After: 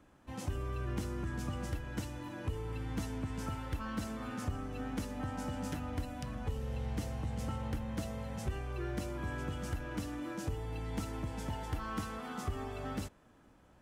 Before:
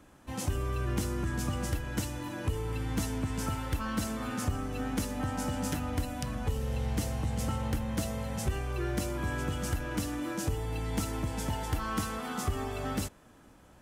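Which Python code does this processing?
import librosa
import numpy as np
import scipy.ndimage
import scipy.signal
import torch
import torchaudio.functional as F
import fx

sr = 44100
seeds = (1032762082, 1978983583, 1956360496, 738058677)

y = fx.peak_eq(x, sr, hz=13000.0, db=-7.5, octaves=1.9)
y = y * 10.0 ** (-5.5 / 20.0)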